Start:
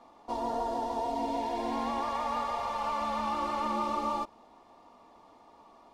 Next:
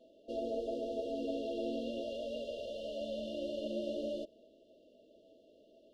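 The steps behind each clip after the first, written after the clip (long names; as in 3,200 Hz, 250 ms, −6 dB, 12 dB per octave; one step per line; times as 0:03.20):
brick-wall band-stop 670–2,700 Hz
bass and treble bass −12 dB, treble −15 dB
level +2 dB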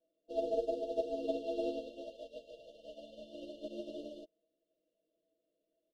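comb filter 6.2 ms, depth 95%
expander for the loud parts 2.5 to 1, over −47 dBFS
level +1.5 dB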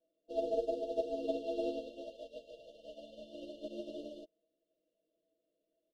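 no processing that can be heard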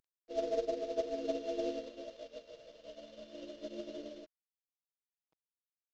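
variable-slope delta modulation 32 kbit/s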